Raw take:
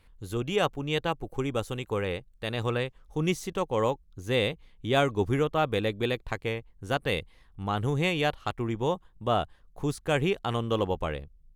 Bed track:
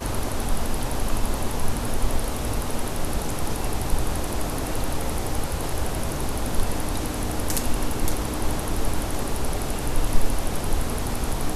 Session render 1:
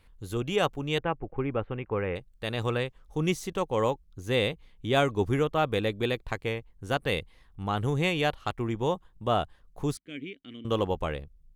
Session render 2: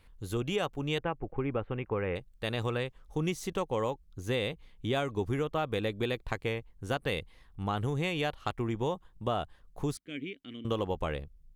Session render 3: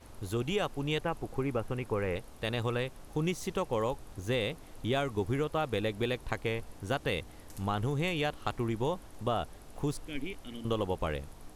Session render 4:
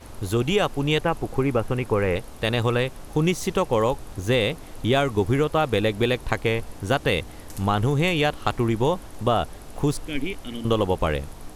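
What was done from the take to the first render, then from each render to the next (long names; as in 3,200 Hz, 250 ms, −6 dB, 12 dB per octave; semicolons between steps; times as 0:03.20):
0:00.98–0:02.16: Butterworth low-pass 2,500 Hz; 0:09.97–0:10.65: formant filter i
downward compressor, threshold −27 dBFS, peak gain reduction 8.5 dB
mix in bed track −25 dB
level +10 dB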